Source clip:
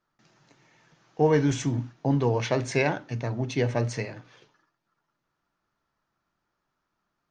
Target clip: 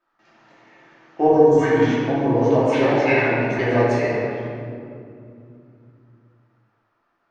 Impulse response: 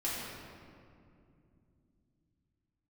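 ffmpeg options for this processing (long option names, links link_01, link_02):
-filter_complex "[0:a]bass=frequency=250:gain=-15,treble=frequency=4000:gain=-14,asettb=1/sr,asplit=3[link_01][link_02][link_03];[link_01]atrim=end=1.274[link_04];[link_02]atrim=start=1.27:end=3.59,asetpts=PTS-STARTPTS,afade=type=in:duration=0.004:curve=qsin,afade=type=out:start_time=2.316:duration=0.004:curve=qsin,acrossover=split=910|5700[link_05][link_06][link_07];[link_05]adelay=30[link_08];[link_06]adelay=300[link_09];[link_08][link_09][link_07]amix=inputs=3:normalize=0,atrim=end_sample=102312[link_10];[link_03]atrim=start=3.586[link_11];[link_04][link_10]acrossfade=duration=0.004:curve1=hsin:curve2=qsin[link_12];[link_12][link_11]acrossfade=duration=0.004:curve1=qsin:curve2=hsin[link_13];[1:a]atrim=start_sample=2205[link_14];[link_13][link_14]afir=irnorm=-1:irlink=0,volume=6.5dB"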